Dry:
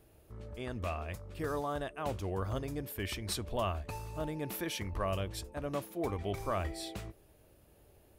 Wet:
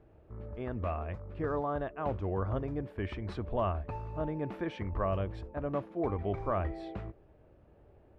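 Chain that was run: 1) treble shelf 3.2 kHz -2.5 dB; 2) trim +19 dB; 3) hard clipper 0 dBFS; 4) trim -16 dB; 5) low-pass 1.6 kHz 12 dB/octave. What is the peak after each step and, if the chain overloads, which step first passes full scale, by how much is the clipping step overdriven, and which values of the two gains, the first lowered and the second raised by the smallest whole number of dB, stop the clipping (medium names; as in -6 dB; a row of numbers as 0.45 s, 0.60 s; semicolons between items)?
-22.5 dBFS, -3.5 dBFS, -3.5 dBFS, -19.5 dBFS, -20.0 dBFS; nothing clips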